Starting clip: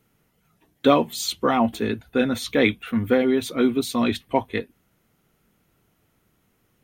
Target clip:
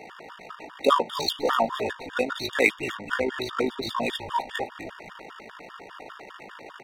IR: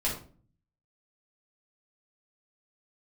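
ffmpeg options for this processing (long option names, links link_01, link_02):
-filter_complex "[0:a]aeval=exprs='val(0)+0.5*0.0355*sgn(val(0))':channel_layout=same,highpass=580,equalizer=frequency=8300:width_type=o:width=1.1:gain=-6.5,adynamicsmooth=sensitivity=4:basefreq=1700,tremolo=f=53:d=0.571,asplit=2[link_01][link_02];[link_02]asplit=3[link_03][link_04][link_05];[link_03]adelay=252,afreqshift=-140,volume=-11.5dB[link_06];[link_04]adelay=504,afreqshift=-280,volume=-21.7dB[link_07];[link_05]adelay=756,afreqshift=-420,volume=-31.8dB[link_08];[link_06][link_07][link_08]amix=inputs=3:normalize=0[link_09];[link_01][link_09]amix=inputs=2:normalize=0,afftfilt=real='re*gt(sin(2*PI*5*pts/sr)*(1-2*mod(floor(b*sr/1024/930),2)),0)':imag='im*gt(sin(2*PI*5*pts/sr)*(1-2*mod(floor(b*sr/1024/930),2)),0)':win_size=1024:overlap=0.75,volume=5.5dB"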